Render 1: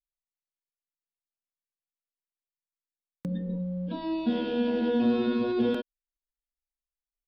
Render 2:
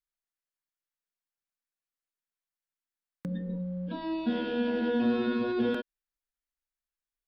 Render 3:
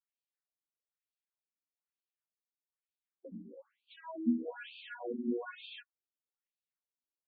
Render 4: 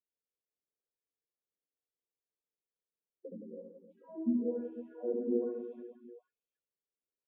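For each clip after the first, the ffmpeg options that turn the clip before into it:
-af "equalizer=f=1600:t=o:w=0.86:g=6.5,volume=0.75"
-af "flanger=delay=9.5:depth=7.3:regen=16:speed=0.65:shape=triangular,afftfilt=real='re*between(b*sr/1024,250*pow(3400/250,0.5+0.5*sin(2*PI*1.1*pts/sr))/1.41,250*pow(3400/250,0.5+0.5*sin(2*PI*1.1*pts/sr))*1.41)':imag='im*between(b*sr/1024,250*pow(3400/250,0.5+0.5*sin(2*PI*1.1*pts/sr))/1.41,250*pow(3400/250,0.5+0.5*sin(2*PI*1.1*pts/sr))*1.41)':win_size=1024:overlap=0.75,volume=1.12"
-filter_complex "[0:a]lowpass=f=460:t=q:w=3.7,asplit=2[s0][s1];[s1]aecho=0:1:70|168|305.2|497.3|766.2:0.631|0.398|0.251|0.158|0.1[s2];[s0][s2]amix=inputs=2:normalize=0,volume=0.631"

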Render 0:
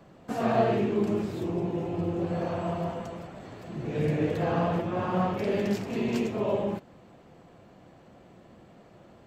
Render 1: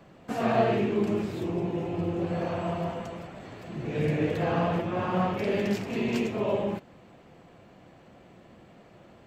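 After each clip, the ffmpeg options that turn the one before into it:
-af "equalizer=f=2400:t=o:w=1.1:g=4"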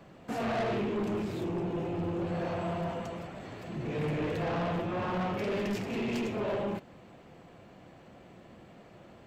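-af "asoftclip=type=tanh:threshold=0.0398"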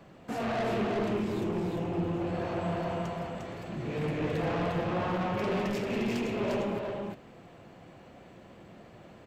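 -af "aecho=1:1:352:0.668"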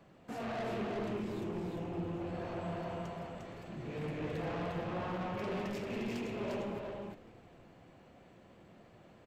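-filter_complex "[0:a]asplit=6[s0][s1][s2][s3][s4][s5];[s1]adelay=255,afreqshift=-94,volume=0.106[s6];[s2]adelay=510,afreqshift=-188,volume=0.0646[s7];[s3]adelay=765,afreqshift=-282,volume=0.0394[s8];[s4]adelay=1020,afreqshift=-376,volume=0.024[s9];[s5]adelay=1275,afreqshift=-470,volume=0.0146[s10];[s0][s6][s7][s8][s9][s10]amix=inputs=6:normalize=0,volume=0.422"

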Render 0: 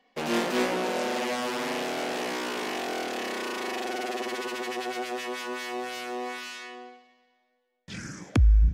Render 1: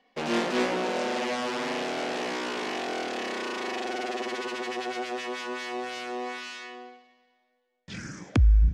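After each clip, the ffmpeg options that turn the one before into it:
-af "lowpass=7000"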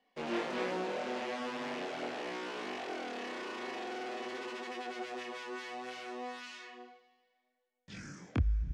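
-filter_complex "[0:a]acrossover=split=3700[s0][s1];[s1]alimiter=level_in=4.22:limit=0.0631:level=0:latency=1:release=86,volume=0.237[s2];[s0][s2]amix=inputs=2:normalize=0,flanger=delay=20:depth=6.9:speed=0.63,volume=0.531"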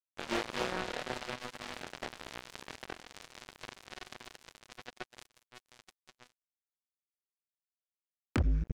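-af "acrusher=bits=4:mix=0:aa=0.5,acompressor=threshold=0.00355:ratio=1.5,volume=2.66"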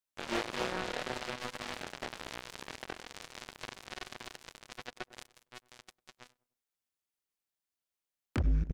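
-filter_complex "[0:a]asplit=2[s0][s1];[s1]adelay=99,lowpass=f=940:p=1,volume=0.1,asplit=2[s2][s3];[s3]adelay=99,lowpass=f=940:p=1,volume=0.46,asplit=2[s4][s5];[s5]adelay=99,lowpass=f=940:p=1,volume=0.46[s6];[s0][s2][s4][s6]amix=inputs=4:normalize=0,alimiter=level_in=1.26:limit=0.0631:level=0:latency=1:release=67,volume=0.794,volume=1.58"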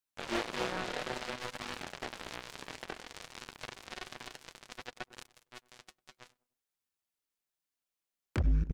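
-af "flanger=delay=0.7:depth=6.3:regen=-61:speed=0.58:shape=sinusoidal,volume=1.58"

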